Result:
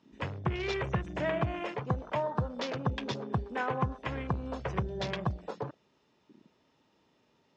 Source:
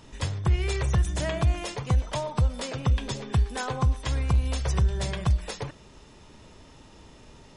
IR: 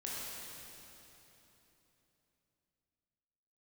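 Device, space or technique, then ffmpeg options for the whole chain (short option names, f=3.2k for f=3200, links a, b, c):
over-cleaned archive recording: -af "highpass=170,lowpass=5.3k,afwtdn=0.01,lowpass=f=7.6k:w=0.5412,lowpass=f=7.6k:w=1.3066"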